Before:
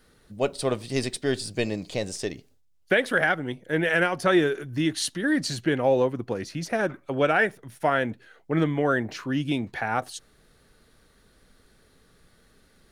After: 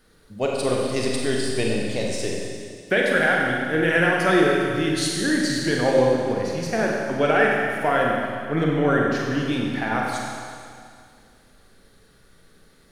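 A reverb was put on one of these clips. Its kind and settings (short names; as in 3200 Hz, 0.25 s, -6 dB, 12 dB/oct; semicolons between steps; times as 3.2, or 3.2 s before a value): Schroeder reverb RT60 2.2 s, combs from 32 ms, DRR -2 dB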